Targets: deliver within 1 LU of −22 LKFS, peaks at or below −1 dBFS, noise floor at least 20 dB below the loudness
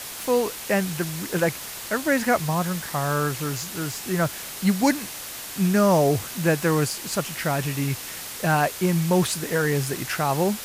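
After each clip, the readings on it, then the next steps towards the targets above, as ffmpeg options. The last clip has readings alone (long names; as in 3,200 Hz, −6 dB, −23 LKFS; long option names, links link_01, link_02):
background noise floor −36 dBFS; target noise floor −44 dBFS; integrated loudness −24.0 LKFS; sample peak −8.0 dBFS; target loudness −22.0 LKFS
→ -af "afftdn=noise_reduction=8:noise_floor=-36"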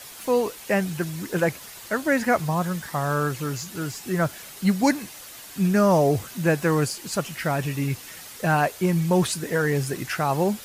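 background noise floor −42 dBFS; target noise floor −45 dBFS
→ -af "afftdn=noise_reduction=6:noise_floor=-42"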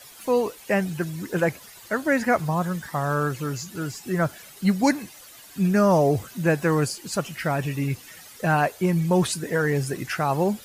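background noise floor −46 dBFS; integrated loudness −24.5 LKFS; sample peak −8.5 dBFS; target loudness −22.0 LKFS
→ -af "volume=2.5dB"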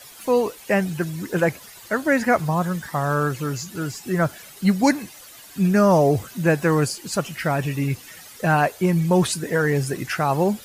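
integrated loudness −22.0 LKFS; sample peak −6.0 dBFS; background noise floor −44 dBFS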